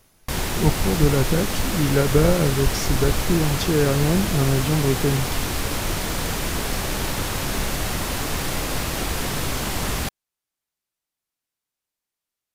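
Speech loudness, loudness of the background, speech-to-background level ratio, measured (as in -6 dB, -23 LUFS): -22.0 LUFS, -25.5 LUFS, 3.5 dB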